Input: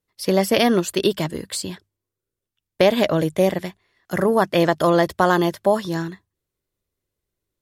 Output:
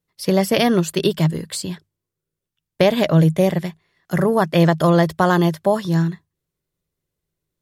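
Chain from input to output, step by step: bell 160 Hz +12.5 dB 0.28 oct

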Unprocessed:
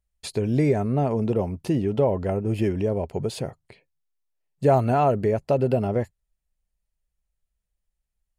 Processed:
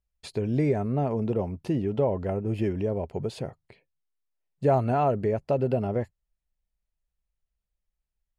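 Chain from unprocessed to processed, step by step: high shelf 6300 Hz -10.5 dB; gain -3.5 dB

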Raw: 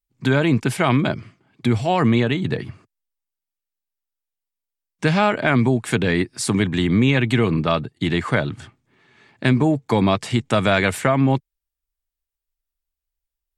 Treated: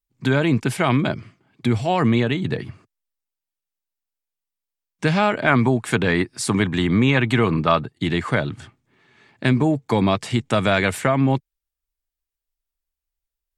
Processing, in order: 5.47–8.04 dynamic EQ 1100 Hz, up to +6 dB, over -33 dBFS, Q 1; gain -1 dB

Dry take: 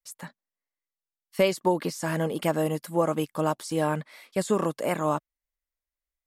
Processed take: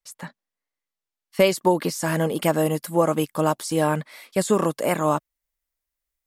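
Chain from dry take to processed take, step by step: high shelf 7600 Hz -6.5 dB, from 1.4 s +5 dB; gain +4.5 dB

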